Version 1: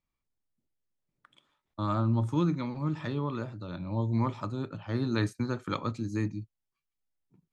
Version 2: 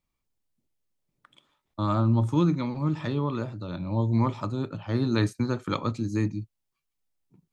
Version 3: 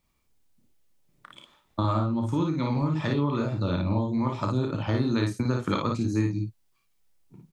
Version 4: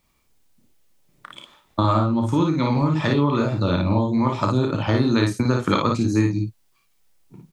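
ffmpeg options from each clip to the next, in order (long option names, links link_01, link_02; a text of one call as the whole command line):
ffmpeg -i in.wav -af "equalizer=frequency=1600:width_type=o:width=0.77:gain=-3,volume=4.5dB" out.wav
ffmpeg -i in.wav -af "acompressor=threshold=-32dB:ratio=6,aecho=1:1:31|56:0.398|0.668,volume=8dB" out.wav
ffmpeg -i in.wav -af "lowshelf=frequency=250:gain=-3.5,volume=8dB" out.wav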